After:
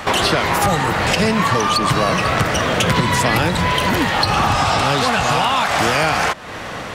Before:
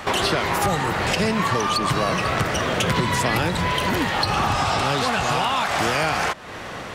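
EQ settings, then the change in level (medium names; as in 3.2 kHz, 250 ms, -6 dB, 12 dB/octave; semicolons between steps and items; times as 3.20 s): band-stop 380 Hz, Q 12; +5.0 dB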